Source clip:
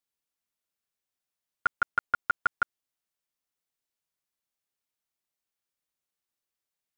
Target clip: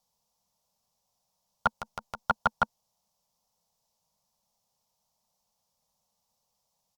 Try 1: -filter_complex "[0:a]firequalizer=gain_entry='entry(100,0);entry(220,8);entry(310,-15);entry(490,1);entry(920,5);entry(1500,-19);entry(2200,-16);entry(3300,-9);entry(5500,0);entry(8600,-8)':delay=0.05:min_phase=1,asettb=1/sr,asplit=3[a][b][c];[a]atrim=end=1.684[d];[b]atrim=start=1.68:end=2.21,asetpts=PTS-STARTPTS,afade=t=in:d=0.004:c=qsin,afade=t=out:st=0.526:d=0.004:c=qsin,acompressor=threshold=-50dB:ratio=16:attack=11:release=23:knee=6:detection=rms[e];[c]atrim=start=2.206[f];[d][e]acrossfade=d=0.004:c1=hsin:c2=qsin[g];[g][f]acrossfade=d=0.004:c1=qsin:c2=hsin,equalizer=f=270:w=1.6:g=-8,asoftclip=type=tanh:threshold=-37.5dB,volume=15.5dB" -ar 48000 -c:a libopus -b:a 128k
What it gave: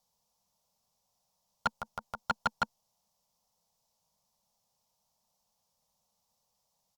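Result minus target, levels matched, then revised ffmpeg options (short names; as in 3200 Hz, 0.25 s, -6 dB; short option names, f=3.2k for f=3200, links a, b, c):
soft clip: distortion +8 dB
-filter_complex "[0:a]firequalizer=gain_entry='entry(100,0);entry(220,8);entry(310,-15);entry(490,1);entry(920,5);entry(1500,-19);entry(2200,-16);entry(3300,-9);entry(5500,0);entry(8600,-8)':delay=0.05:min_phase=1,asettb=1/sr,asplit=3[a][b][c];[a]atrim=end=1.684[d];[b]atrim=start=1.68:end=2.21,asetpts=PTS-STARTPTS,afade=t=in:d=0.004:c=qsin,afade=t=out:st=0.526:d=0.004:c=qsin,acompressor=threshold=-50dB:ratio=16:attack=11:release=23:knee=6:detection=rms[e];[c]atrim=start=2.206[f];[d][e]acrossfade=d=0.004:c1=hsin:c2=qsin[g];[g][f]acrossfade=d=0.004:c1=qsin:c2=hsin,equalizer=f=270:w=1.6:g=-8,asoftclip=type=tanh:threshold=-28dB,volume=15.5dB" -ar 48000 -c:a libopus -b:a 128k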